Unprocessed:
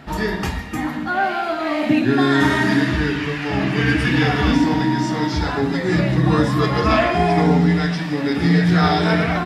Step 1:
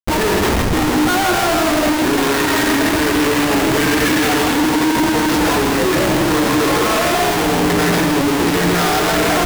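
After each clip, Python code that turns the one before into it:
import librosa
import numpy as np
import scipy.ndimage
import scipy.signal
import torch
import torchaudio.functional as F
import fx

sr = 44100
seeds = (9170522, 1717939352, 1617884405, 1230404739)

y = fx.low_shelf_res(x, sr, hz=230.0, db=-11.0, q=1.5)
y = fx.schmitt(y, sr, flips_db=-29.0)
y = y + 10.0 ** (-6.0 / 20.0) * np.pad(y, (int(161 * sr / 1000.0), 0))[:len(y)]
y = F.gain(torch.from_numpy(y), 3.0).numpy()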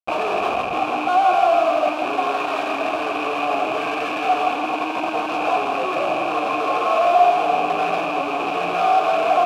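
y = fx.rattle_buzz(x, sr, strikes_db=-21.0, level_db=-14.0)
y = fx.rider(y, sr, range_db=10, speed_s=0.5)
y = fx.vowel_filter(y, sr, vowel='a')
y = F.gain(torch.from_numpy(y), 6.5).numpy()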